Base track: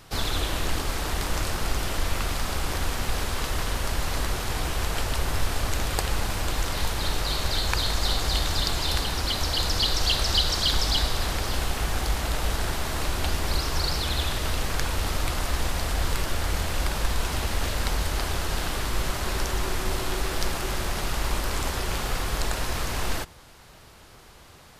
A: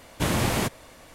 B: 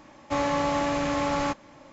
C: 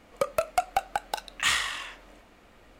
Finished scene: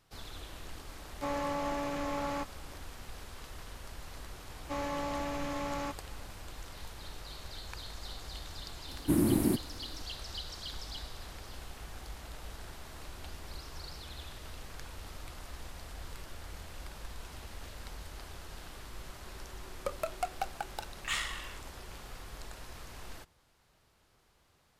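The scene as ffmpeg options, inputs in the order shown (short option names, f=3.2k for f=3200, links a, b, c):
-filter_complex "[2:a]asplit=2[a][b];[0:a]volume=-19dB[c];[a]equalizer=f=650:w=0.33:g=3.5[d];[1:a]firequalizer=gain_entry='entry(130,0);entry(320,14);entry(460,-6);entry(920,-8);entry(4900,-20);entry(9600,4)':delay=0.05:min_phase=1[e];[d]atrim=end=1.92,asetpts=PTS-STARTPTS,volume=-12dB,afade=t=in:d=0.004:c=hsin,afade=t=out:st=1.916:d=0.004:c=hsin,adelay=910[f];[b]atrim=end=1.92,asetpts=PTS-STARTPTS,volume=-10.5dB,afade=t=in:d=0.004:c=hsin,afade=t=out:st=1.916:d=0.004:c=hsin,adelay=4390[g];[e]atrim=end=1.14,asetpts=PTS-STARTPTS,volume=-6.5dB,afade=t=in:d=0.004:c=hsin,afade=t=out:st=1.136:d=0.004:c=hsin,adelay=8880[h];[3:a]atrim=end=2.79,asetpts=PTS-STARTPTS,volume=-9.5dB,afade=t=in:d=0.004:c=hsin,afade=t=out:st=2.786:d=0.004:c=hsin,adelay=19650[i];[c][f][g][h][i]amix=inputs=5:normalize=0"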